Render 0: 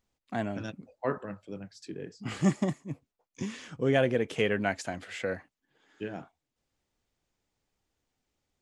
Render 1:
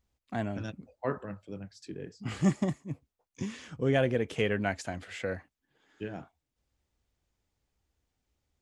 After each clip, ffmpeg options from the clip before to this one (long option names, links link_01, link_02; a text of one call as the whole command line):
ffmpeg -i in.wav -af "equalizer=frequency=60:width=1:gain=12,volume=-2dB" out.wav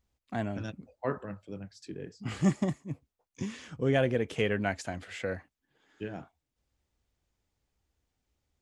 ffmpeg -i in.wav -af anull out.wav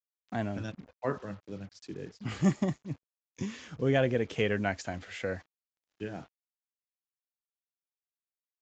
ffmpeg -i in.wav -af "acrusher=bits=8:mix=0:aa=0.5,aresample=16000,aresample=44100" out.wav